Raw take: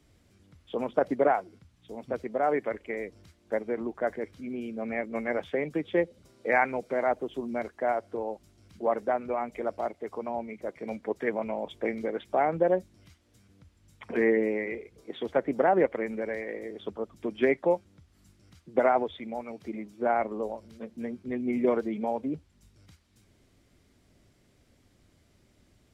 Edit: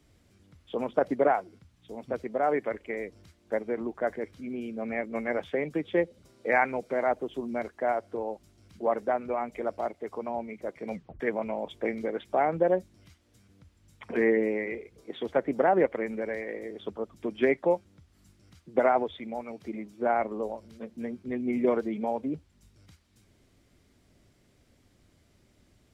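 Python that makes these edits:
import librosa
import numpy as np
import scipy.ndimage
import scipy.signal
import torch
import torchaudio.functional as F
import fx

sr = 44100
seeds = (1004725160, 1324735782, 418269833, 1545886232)

y = fx.edit(x, sr, fx.tape_stop(start_s=10.94, length_s=0.26), tone=tone)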